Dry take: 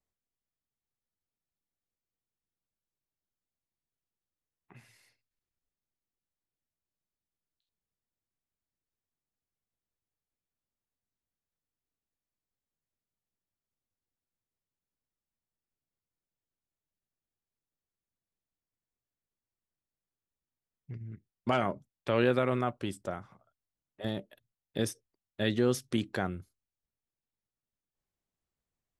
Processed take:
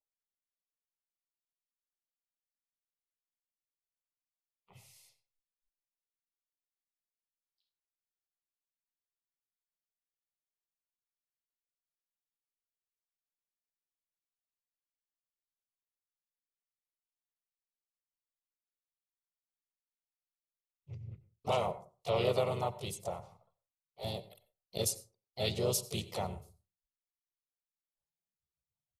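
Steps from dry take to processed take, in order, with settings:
noise reduction from a noise print of the clip's start 21 dB
pitch-shifted copies added −4 semitones −6 dB, +3 semitones −7 dB, +4 semitones −11 dB
high-shelf EQ 3,500 Hz +9.5 dB
phaser with its sweep stopped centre 670 Hz, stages 4
on a send: convolution reverb RT60 0.35 s, pre-delay 82 ms, DRR 16 dB
on the sum: level −2.5 dB

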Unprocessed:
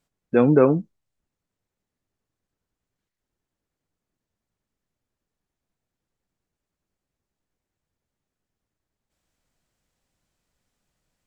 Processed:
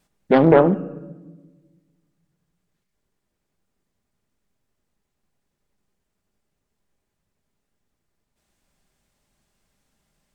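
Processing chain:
pitch vibrato 13 Hz 28 cents
in parallel at +0.5 dB: brickwall limiter −22 dBFS, peak gain reduction 17 dB
on the sum: wrong playback speed 44.1 kHz file played as 48 kHz
on a send at −9.5 dB: convolution reverb RT60 1.2 s, pre-delay 5 ms
on the sum: speech leveller 2 s
highs frequency-modulated by the lows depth 0.4 ms
level +1 dB

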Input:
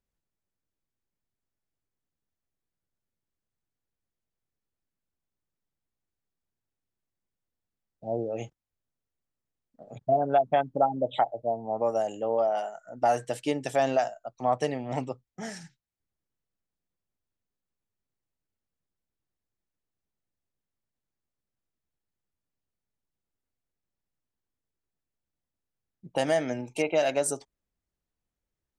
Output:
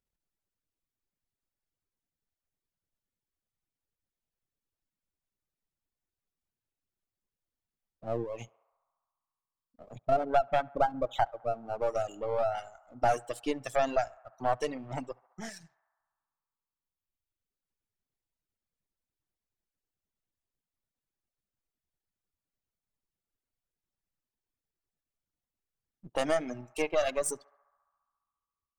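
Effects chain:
gain on one half-wave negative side −7 dB
feedback echo with a band-pass in the loop 69 ms, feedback 83%, band-pass 1,100 Hz, level −15 dB
reverb reduction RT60 1.9 s

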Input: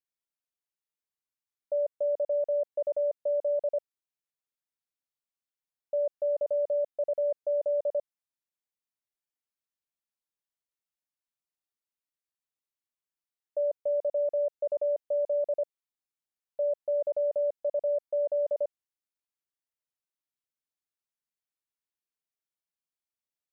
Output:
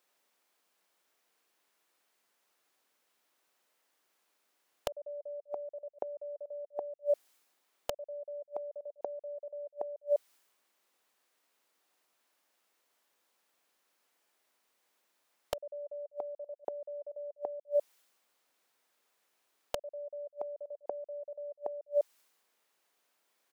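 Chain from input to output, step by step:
played backwards from end to start
single-tap delay 200 ms −21 dB
gate with flip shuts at −37 dBFS, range −38 dB
high-pass filter 360 Hz
in parallel at +1 dB: wrap-around overflow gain 43.5 dB
on the sum: one half of a high-frequency compander decoder only
level +17.5 dB

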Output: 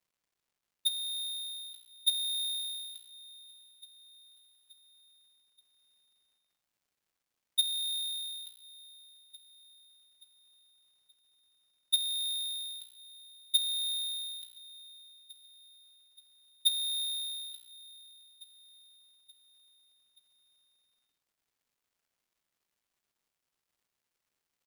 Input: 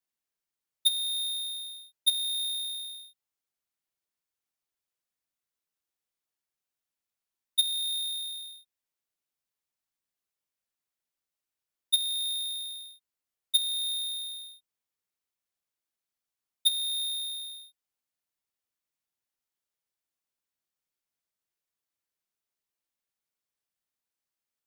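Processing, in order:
speech leveller 2 s
surface crackle 410 per second −65 dBFS
repeating echo 877 ms, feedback 50%, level −18.5 dB
level −5 dB

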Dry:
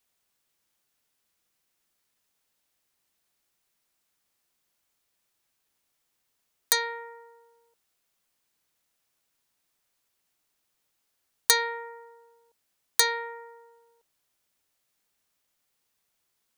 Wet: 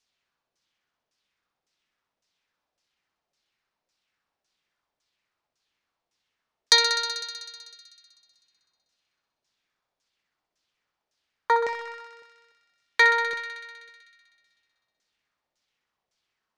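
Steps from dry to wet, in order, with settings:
leveller curve on the samples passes 1
auto-filter low-pass saw down 1.8 Hz 560–6,200 Hz
feedback echo with a high-pass in the loop 63 ms, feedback 83%, high-pass 700 Hz, level −8 dB

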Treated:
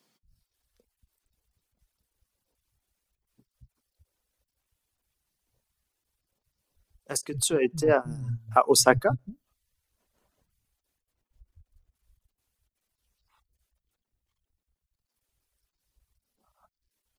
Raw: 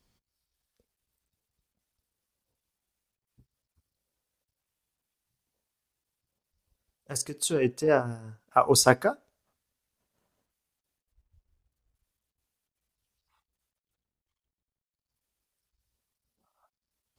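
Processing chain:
low-shelf EQ 78 Hz +10.5 dB
multiband delay without the direct sound highs, lows 230 ms, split 180 Hz
in parallel at −2 dB: downward compressor, threshold −32 dBFS, peak gain reduction 18 dB
on the sum: reverb reduction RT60 0.59 s
every ending faded ahead of time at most 590 dB per second

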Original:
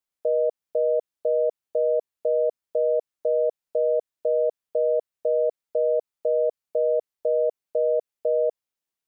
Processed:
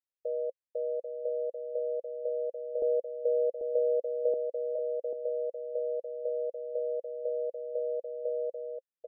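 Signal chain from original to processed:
formant filter e
0:02.82–0:04.34: spectral tilt −5.5 dB per octave
single-tap delay 790 ms −6 dB
level −4 dB

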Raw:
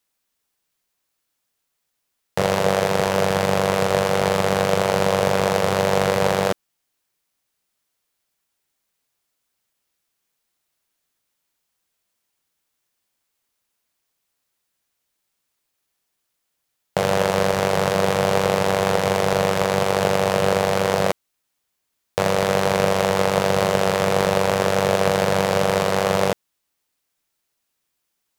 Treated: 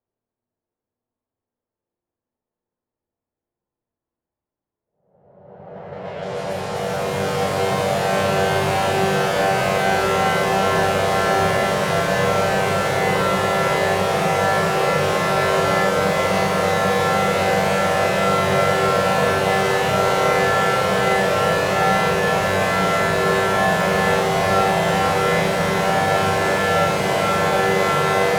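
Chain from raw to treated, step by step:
spring reverb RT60 3.6 s, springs 54 ms, chirp 40 ms, DRR −0.5 dB
extreme stretch with random phases 9.1×, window 0.50 s, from 0:16.18
low-pass that shuts in the quiet parts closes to 610 Hz, open at −21 dBFS

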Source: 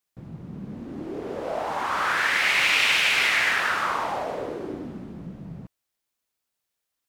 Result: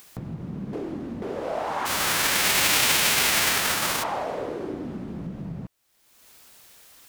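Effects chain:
0:00.73–0:01.22: reverse
0:01.85–0:04.02: spectral envelope flattened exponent 0.3
upward compression, threshold −27 dBFS

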